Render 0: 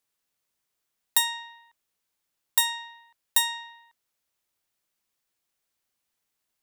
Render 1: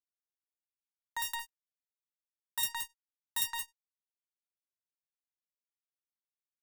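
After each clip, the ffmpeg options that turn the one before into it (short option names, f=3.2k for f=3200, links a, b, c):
-filter_complex "[0:a]aecho=1:1:55.39|169.1|227.4:0.631|0.708|0.316,acrossover=split=2300[a][b];[a]aeval=exprs='val(0)*(1-1/2+1/2*cos(2*PI*5.1*n/s))':c=same[c];[b]aeval=exprs='val(0)*(1-1/2-1/2*cos(2*PI*5.1*n/s))':c=same[d];[c][d]amix=inputs=2:normalize=0,acrusher=bits=4:mix=0:aa=0.5,volume=-6dB"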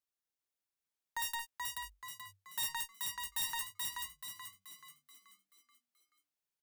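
-filter_complex "[0:a]asoftclip=type=hard:threshold=-33dB,asplit=7[a][b][c][d][e][f][g];[b]adelay=431,afreqshift=48,volume=-3dB[h];[c]adelay=862,afreqshift=96,volume=-10.1dB[i];[d]adelay=1293,afreqshift=144,volume=-17.3dB[j];[e]adelay=1724,afreqshift=192,volume=-24.4dB[k];[f]adelay=2155,afreqshift=240,volume=-31.5dB[l];[g]adelay=2586,afreqshift=288,volume=-38.7dB[m];[a][h][i][j][k][l][m]amix=inputs=7:normalize=0,volume=1dB"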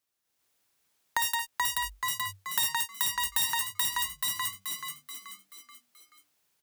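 -af "acompressor=threshold=-44dB:ratio=6,highpass=42,dynaudnorm=f=220:g=3:m=9.5dB,volume=8.5dB"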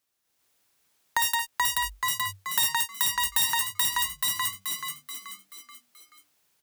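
-af "asoftclip=type=tanh:threshold=-14.5dB,volume=4dB"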